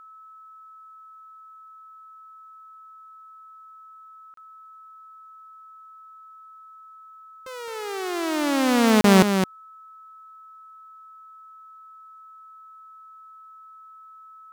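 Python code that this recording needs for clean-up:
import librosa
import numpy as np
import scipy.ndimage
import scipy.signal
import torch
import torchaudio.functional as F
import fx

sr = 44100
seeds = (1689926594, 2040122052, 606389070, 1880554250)

y = fx.notch(x, sr, hz=1300.0, q=30.0)
y = fx.fix_interpolate(y, sr, at_s=(4.34, 9.01), length_ms=33.0)
y = fx.fix_echo_inverse(y, sr, delay_ms=215, level_db=-7.0)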